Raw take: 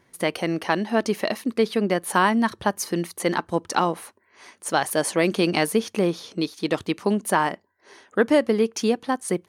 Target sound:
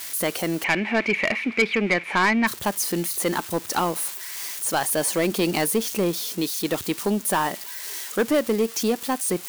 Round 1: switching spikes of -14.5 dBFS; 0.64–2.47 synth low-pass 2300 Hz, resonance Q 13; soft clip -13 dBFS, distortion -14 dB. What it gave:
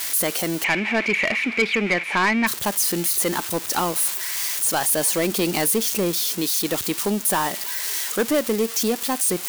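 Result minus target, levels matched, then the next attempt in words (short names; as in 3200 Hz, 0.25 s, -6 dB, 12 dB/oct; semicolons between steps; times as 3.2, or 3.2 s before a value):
switching spikes: distortion +8 dB
switching spikes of -23 dBFS; 0.64–2.47 synth low-pass 2300 Hz, resonance Q 13; soft clip -13 dBFS, distortion -12 dB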